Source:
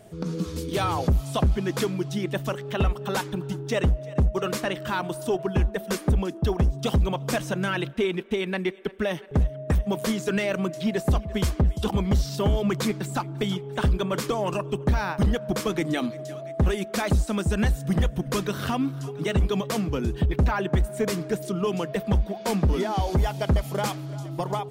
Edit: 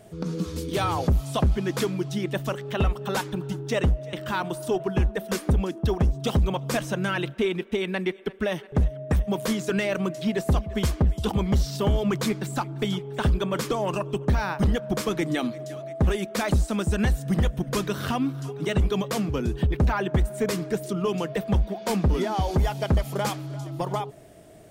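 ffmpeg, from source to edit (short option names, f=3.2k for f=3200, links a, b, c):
-filter_complex "[0:a]asplit=2[a][b];[a]atrim=end=4.132[c];[b]atrim=start=4.718[d];[c][d]acrossfade=d=0.004:c1=hsin:c2=hsin"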